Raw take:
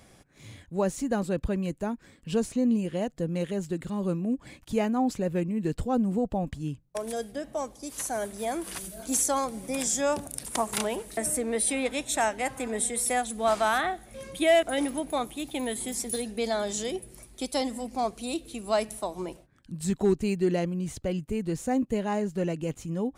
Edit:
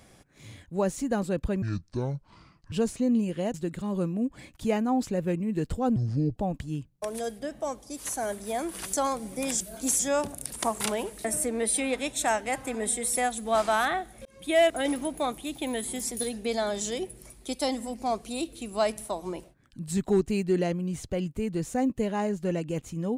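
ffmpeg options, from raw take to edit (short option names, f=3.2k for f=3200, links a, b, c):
-filter_complex "[0:a]asplit=10[a][b][c][d][e][f][g][h][i][j];[a]atrim=end=1.624[k];[b]atrim=start=1.62:end=2.28,asetpts=PTS-STARTPTS,asetrate=26460,aresample=44100[l];[c]atrim=start=2.276:end=3.102[m];[d]atrim=start=3.618:end=6.044[n];[e]atrim=start=6.04:end=6.29,asetpts=PTS-STARTPTS,asetrate=27342,aresample=44100,atrim=end_sample=17782,asetpts=PTS-STARTPTS[o];[f]atrim=start=6.286:end=8.862[p];[g]atrim=start=9.248:end=9.922[q];[h]atrim=start=8.858:end=9.252[r];[i]atrim=start=9.918:end=14.18,asetpts=PTS-STARTPTS,afade=t=out:st=4.258:d=0.004:c=hsin[s];[j]atrim=start=14.18,asetpts=PTS-STARTPTS,afade=t=in:d=0.35[t];[k][l]acrossfade=d=0.004:c1=hsin:c2=hsin[u];[u][m]acrossfade=d=0.004:c1=hsin:c2=hsin[v];[v][n]acrossfade=d=0.004:c1=hsin:c2=hsin[w];[w][o]acrossfade=d=0.004:c1=hsin:c2=hsin[x];[x][p]acrossfade=d=0.004:c1=hsin:c2=hsin[y];[y][q]acrossfade=d=0.004:c1=hsin:c2=hsin[z];[z][r]acrossfade=d=0.004:c1=hsin:c2=hsin[aa];[s][t]concat=n=2:v=0:a=1[ab];[aa][ab]acrossfade=d=0.004:c1=hsin:c2=hsin"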